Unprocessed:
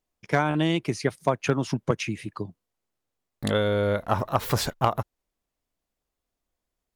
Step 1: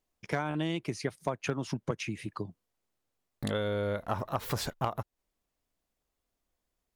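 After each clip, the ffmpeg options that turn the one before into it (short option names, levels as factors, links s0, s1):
-af "acompressor=threshold=0.0178:ratio=2"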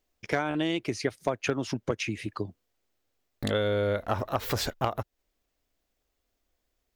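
-af "equalizer=f=160:t=o:w=0.67:g=-9,equalizer=f=1000:t=o:w=0.67:g=-5,equalizer=f=10000:t=o:w=0.67:g=-6,volume=2"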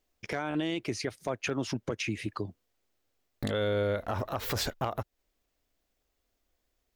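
-af "alimiter=limit=0.0841:level=0:latency=1:release=32"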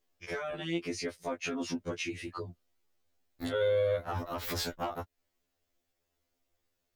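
-af "afftfilt=real='re*2*eq(mod(b,4),0)':imag='im*2*eq(mod(b,4),0)':win_size=2048:overlap=0.75"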